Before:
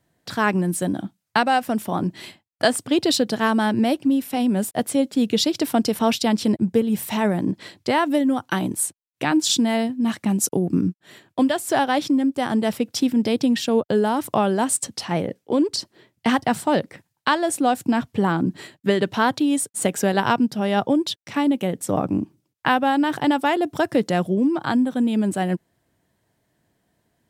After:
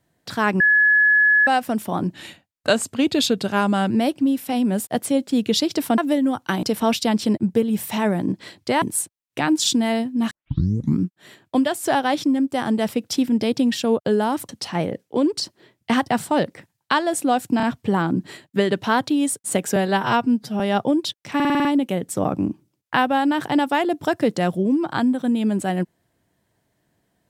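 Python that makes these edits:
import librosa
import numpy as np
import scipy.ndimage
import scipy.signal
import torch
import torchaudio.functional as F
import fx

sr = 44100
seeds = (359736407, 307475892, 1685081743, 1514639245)

y = fx.edit(x, sr, fx.bleep(start_s=0.6, length_s=0.87, hz=1700.0, db=-12.0),
    fx.speed_span(start_s=2.14, length_s=1.61, speed=0.91),
    fx.move(start_s=8.01, length_s=0.65, to_s=5.82),
    fx.tape_start(start_s=10.15, length_s=0.71),
    fx.cut(start_s=14.33, length_s=0.52),
    fx.stutter(start_s=17.93, slice_s=0.03, count=3),
    fx.stretch_span(start_s=20.06, length_s=0.56, factor=1.5),
    fx.stutter(start_s=21.37, slice_s=0.05, count=7), tone=tone)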